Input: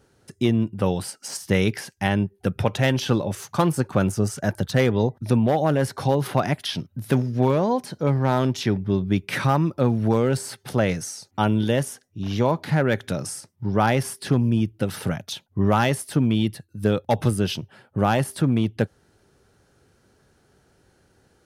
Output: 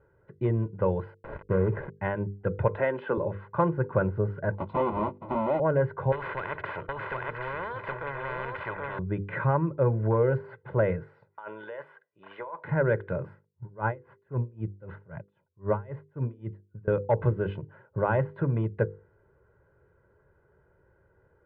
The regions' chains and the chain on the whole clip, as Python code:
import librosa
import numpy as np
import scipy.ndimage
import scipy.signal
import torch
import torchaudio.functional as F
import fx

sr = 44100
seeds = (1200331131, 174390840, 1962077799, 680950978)

y = fx.chain(x, sr, fx.median_filter(points=41),
    fx.sample_gate(floor_db=-50.0),
    fx.env_flatten(amount_pct=50), at=(1.14, 1.97))
y = fx.chain(y, sr, fx.cheby1_bandpass(low_hz=220.0, high_hz=7800.0, order=3),
    fx.band_squash(depth_pct=70), at=(2.76, 3.18))
y = fx.chain(y, sr, fx.halfwave_hold(),
    fx.highpass(hz=99.0, slope=12),
    fx.fixed_phaser(hz=450.0, stages=6), at=(4.54, 5.6))
y = fx.chain(y, sr, fx.echo_single(ms=769, db=-4.0),
    fx.spectral_comp(ratio=10.0), at=(6.12, 8.99))
y = fx.chain(y, sr, fx.highpass(hz=850.0, slope=12),
    fx.over_compress(threshold_db=-34.0, ratio=-1.0), at=(11.29, 12.64))
y = fx.chain(y, sr, fx.high_shelf(hz=3000.0, db=-5.5),
    fx.tremolo_db(hz=3.8, depth_db=29), at=(13.34, 16.88))
y = scipy.signal.sosfilt(scipy.signal.cheby2(4, 60, 5700.0, 'lowpass', fs=sr, output='sos'), y)
y = fx.hum_notches(y, sr, base_hz=50, count=10)
y = y + 0.72 * np.pad(y, (int(2.0 * sr / 1000.0), 0))[:len(y)]
y = y * 10.0 ** (-4.5 / 20.0)